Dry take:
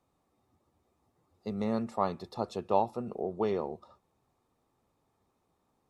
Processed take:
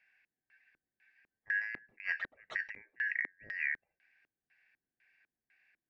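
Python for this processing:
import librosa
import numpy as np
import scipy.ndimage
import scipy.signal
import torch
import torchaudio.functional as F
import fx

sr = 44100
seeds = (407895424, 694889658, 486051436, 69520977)

y = fx.band_shuffle(x, sr, order='3142')
y = fx.filter_lfo_lowpass(y, sr, shape='square', hz=2.0, low_hz=320.0, high_hz=3000.0, q=1.3)
y = fx.over_compress(y, sr, threshold_db=-33.0, ratio=-0.5)
y = y * 10.0 ** (-1.5 / 20.0)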